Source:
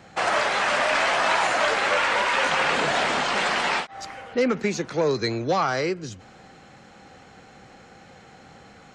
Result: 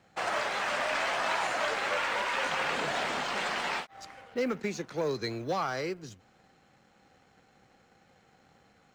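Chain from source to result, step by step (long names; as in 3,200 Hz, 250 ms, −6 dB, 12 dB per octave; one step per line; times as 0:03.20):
mu-law and A-law mismatch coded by A
level −8 dB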